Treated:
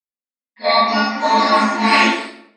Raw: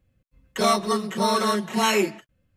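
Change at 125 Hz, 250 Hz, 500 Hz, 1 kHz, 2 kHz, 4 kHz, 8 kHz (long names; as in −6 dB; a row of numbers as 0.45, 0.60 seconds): can't be measured, +5.5 dB, +3.5 dB, +9.5 dB, +12.0 dB, +8.0 dB, −3.5 dB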